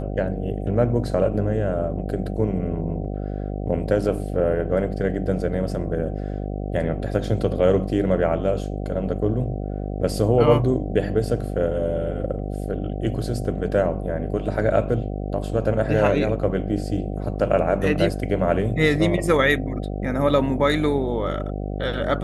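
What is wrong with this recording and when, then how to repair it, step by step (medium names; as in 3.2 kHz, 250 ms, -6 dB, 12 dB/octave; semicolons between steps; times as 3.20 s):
buzz 50 Hz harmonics 15 -28 dBFS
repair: de-hum 50 Hz, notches 15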